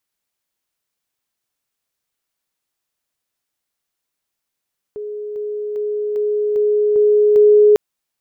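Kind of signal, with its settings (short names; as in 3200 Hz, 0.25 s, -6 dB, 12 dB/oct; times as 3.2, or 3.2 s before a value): level ladder 419 Hz -24.5 dBFS, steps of 3 dB, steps 7, 0.40 s 0.00 s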